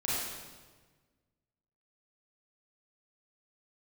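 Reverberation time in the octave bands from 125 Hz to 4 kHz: 2.0, 1.7, 1.5, 1.3, 1.2, 1.1 seconds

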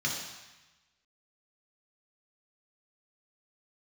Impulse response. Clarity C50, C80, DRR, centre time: 2.5 dB, 4.5 dB, −3.0 dB, 55 ms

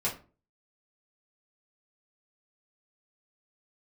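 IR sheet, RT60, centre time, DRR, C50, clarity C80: 0.35 s, 20 ms, −8.0 dB, 10.5 dB, 16.5 dB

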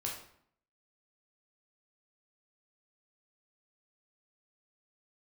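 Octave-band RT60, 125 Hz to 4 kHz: 0.70, 0.75, 0.65, 0.65, 0.55, 0.50 seconds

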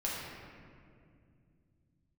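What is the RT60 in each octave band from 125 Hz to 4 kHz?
4.4, 3.7, 2.7, 2.0, 1.9, 1.3 seconds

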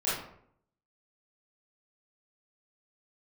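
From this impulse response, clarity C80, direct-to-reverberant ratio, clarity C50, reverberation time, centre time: 6.0 dB, −11.0 dB, 0.5 dB, 0.65 s, 58 ms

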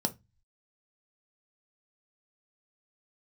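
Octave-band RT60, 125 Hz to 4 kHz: 0.60, 0.30, 0.20, 0.20, 0.20, 0.20 seconds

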